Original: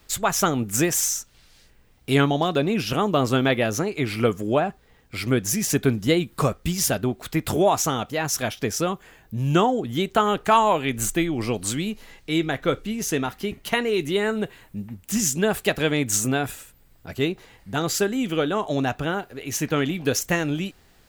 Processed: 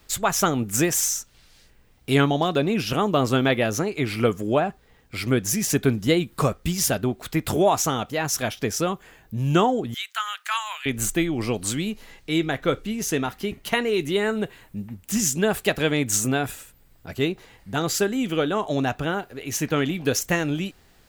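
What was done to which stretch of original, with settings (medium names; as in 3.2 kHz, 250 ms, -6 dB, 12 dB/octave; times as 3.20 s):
9.94–10.86 s: high-pass 1.4 kHz 24 dB/octave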